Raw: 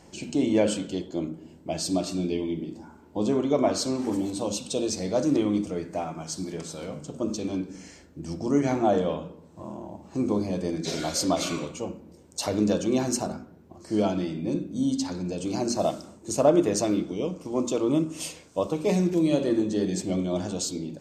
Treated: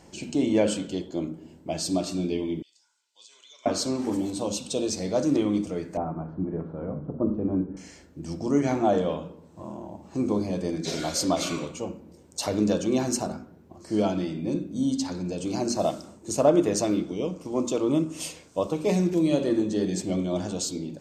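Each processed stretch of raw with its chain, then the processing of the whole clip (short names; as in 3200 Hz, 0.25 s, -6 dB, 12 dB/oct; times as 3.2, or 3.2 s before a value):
2.62–3.66 Butterworth band-pass 5600 Hz, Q 1 + compressor, threshold -47 dBFS + comb 2 ms, depth 33%
5.97–7.77 LPF 1500 Hz 24 dB/oct + tilt -2 dB/oct
whole clip: dry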